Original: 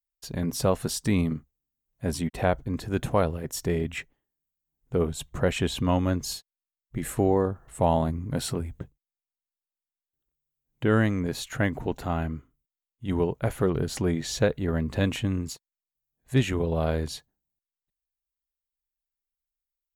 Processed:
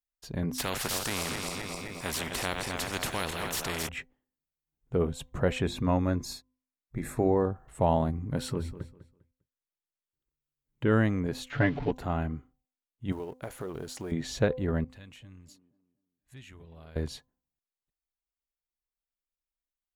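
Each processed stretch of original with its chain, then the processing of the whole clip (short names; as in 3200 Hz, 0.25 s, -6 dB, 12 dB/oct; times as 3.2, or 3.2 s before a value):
0.58–3.89 regenerating reverse delay 0.13 s, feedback 70%, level -12 dB + spectral compressor 4:1
5.62–7.43 Butterworth band-stop 3000 Hz, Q 4.7 + notches 50/100/150/200/250/300/350 Hz
8.37–10.92 Butterworth band-stop 710 Hz, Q 4.8 + feedback echo 0.2 s, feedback 24%, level -14 dB
11.5–11.91 switching spikes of -25.5 dBFS + LPF 3700 Hz 24 dB/oct + comb 7 ms, depth 87%
13.12–14.12 G.711 law mismatch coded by A + tone controls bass -9 dB, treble +8 dB + compressor 5:1, threshold -31 dBFS
14.84–16.96 passive tone stack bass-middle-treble 5-5-5 + compressor 2:1, threshold -47 dBFS + band-limited delay 0.241 s, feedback 33%, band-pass 420 Hz, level -9 dB
whole clip: high shelf 4300 Hz -7.5 dB; de-hum 255.6 Hz, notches 4; gain -2 dB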